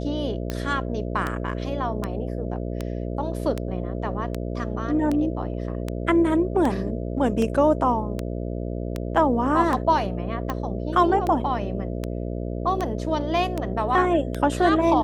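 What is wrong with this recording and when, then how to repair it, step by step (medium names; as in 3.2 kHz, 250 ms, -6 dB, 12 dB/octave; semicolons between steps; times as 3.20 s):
buzz 60 Hz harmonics 11 -29 dBFS
tick 78 rpm -13 dBFS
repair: de-click; de-hum 60 Hz, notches 11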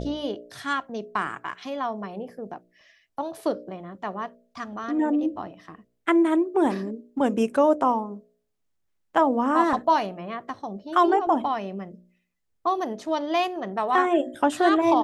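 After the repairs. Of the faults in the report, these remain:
nothing left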